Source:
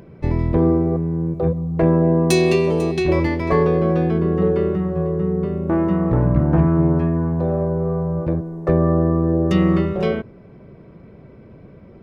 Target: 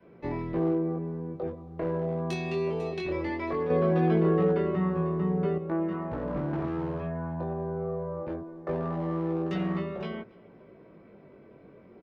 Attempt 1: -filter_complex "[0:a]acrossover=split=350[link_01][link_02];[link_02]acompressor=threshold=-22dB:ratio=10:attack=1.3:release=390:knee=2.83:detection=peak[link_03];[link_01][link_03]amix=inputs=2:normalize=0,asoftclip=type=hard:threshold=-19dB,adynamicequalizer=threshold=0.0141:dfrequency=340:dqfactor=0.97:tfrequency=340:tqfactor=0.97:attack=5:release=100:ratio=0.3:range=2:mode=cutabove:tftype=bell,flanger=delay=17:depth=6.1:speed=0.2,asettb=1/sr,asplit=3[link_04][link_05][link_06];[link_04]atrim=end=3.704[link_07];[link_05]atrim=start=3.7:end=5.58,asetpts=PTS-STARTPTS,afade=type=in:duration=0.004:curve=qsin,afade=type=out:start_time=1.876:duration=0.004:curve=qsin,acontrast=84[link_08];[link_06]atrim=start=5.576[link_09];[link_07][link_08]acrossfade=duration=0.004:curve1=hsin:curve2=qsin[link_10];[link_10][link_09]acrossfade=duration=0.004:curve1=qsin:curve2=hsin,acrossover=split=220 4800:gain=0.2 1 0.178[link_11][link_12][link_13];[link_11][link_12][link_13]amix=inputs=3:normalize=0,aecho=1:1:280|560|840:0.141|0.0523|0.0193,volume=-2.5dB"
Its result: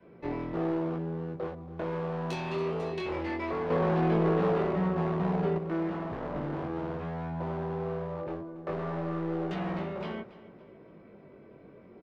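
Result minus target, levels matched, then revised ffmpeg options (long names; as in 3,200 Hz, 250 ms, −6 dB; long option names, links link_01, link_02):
hard clipping: distortion +11 dB; echo-to-direct +8.5 dB
-filter_complex "[0:a]acrossover=split=350[link_01][link_02];[link_02]acompressor=threshold=-22dB:ratio=10:attack=1.3:release=390:knee=2.83:detection=peak[link_03];[link_01][link_03]amix=inputs=2:normalize=0,asoftclip=type=hard:threshold=-11.5dB,adynamicequalizer=threshold=0.0141:dfrequency=340:dqfactor=0.97:tfrequency=340:tqfactor=0.97:attack=5:release=100:ratio=0.3:range=2:mode=cutabove:tftype=bell,flanger=delay=17:depth=6.1:speed=0.2,asettb=1/sr,asplit=3[link_04][link_05][link_06];[link_04]atrim=end=3.704[link_07];[link_05]atrim=start=3.7:end=5.58,asetpts=PTS-STARTPTS,afade=type=in:duration=0.004:curve=qsin,afade=type=out:start_time=1.876:duration=0.004:curve=qsin,acontrast=84[link_08];[link_06]atrim=start=5.576[link_09];[link_07][link_08]acrossfade=duration=0.004:curve1=hsin:curve2=qsin[link_10];[link_10][link_09]acrossfade=duration=0.004:curve1=qsin:curve2=hsin,acrossover=split=220 4800:gain=0.2 1 0.178[link_11][link_12][link_13];[link_11][link_12][link_13]amix=inputs=3:normalize=0,aecho=1:1:280|560:0.0531|0.0196,volume=-2.5dB"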